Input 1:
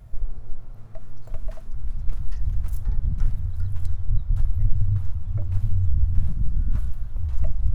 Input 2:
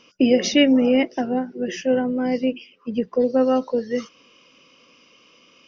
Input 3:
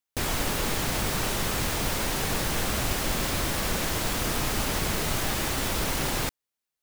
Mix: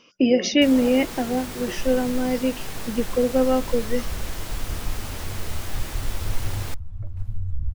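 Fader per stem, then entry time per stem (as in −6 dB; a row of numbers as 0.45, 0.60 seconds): −7.0, −1.5, −7.5 decibels; 1.65, 0.00, 0.45 seconds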